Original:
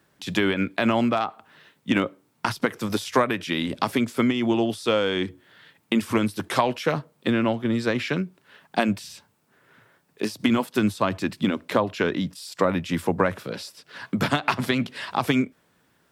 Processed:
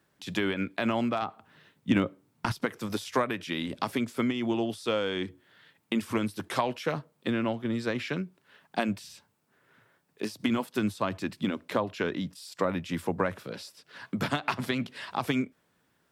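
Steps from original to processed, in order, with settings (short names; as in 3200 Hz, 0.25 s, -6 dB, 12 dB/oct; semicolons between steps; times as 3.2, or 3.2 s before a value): 1.22–2.52 low shelf 230 Hz +10.5 dB; gain -6.5 dB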